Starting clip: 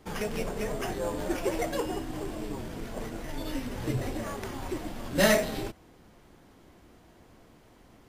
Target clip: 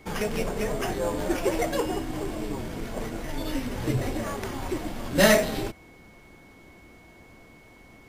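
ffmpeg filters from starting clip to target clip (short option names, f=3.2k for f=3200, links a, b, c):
-af "aeval=exprs='val(0)+0.00112*sin(2*PI*2200*n/s)':c=same,volume=4dB"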